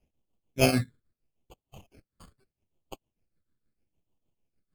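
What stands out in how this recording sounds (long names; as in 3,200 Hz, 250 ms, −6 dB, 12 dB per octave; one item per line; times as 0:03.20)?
aliases and images of a low sample rate 1,900 Hz, jitter 0%
phaser sweep stages 8, 0.78 Hz, lowest notch 800–1,700 Hz
tremolo triangle 6.6 Hz, depth 85%
AAC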